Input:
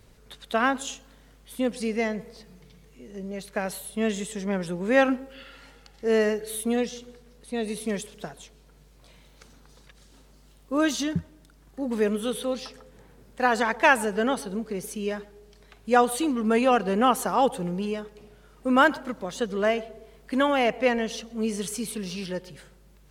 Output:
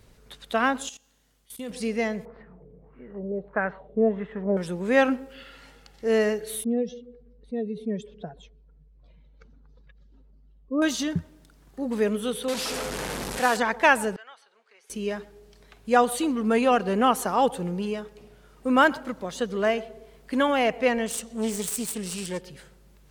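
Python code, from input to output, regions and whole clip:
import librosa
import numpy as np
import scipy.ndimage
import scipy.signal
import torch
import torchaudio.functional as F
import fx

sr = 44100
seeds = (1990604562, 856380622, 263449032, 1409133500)

y = fx.chain(x, sr, fx.comb_fb(f0_hz=82.0, decay_s=0.96, harmonics='all', damping=0.0, mix_pct=50),
    fx.level_steps(step_db=17),
    fx.high_shelf(hz=3500.0, db=10.5), at=(0.89, 1.7))
y = fx.chain(y, sr, fx.lowpass(hz=2700.0, slope=12),
    fx.filter_lfo_lowpass(shape='sine', hz=1.6, low_hz=450.0, high_hz=1700.0, q=2.8), at=(2.25, 4.57))
y = fx.chain(y, sr, fx.spec_expand(power=1.8),
    fx.air_absorb(metres=160.0), at=(6.64, 10.82))
y = fx.chain(y, sr, fx.delta_mod(bps=64000, step_db=-23.5),
    fx.low_shelf(hz=120.0, db=-10.0), at=(12.48, 13.57))
y = fx.chain(y, sr, fx.bandpass_edges(low_hz=710.0, high_hz=2100.0),
    fx.differentiator(),
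    fx.band_squash(depth_pct=40), at=(14.16, 14.9))
y = fx.chain(y, sr, fx.self_delay(depth_ms=0.24),
    fx.peak_eq(hz=8200.0, db=14.0, octaves=0.58), at=(21.06, 22.41))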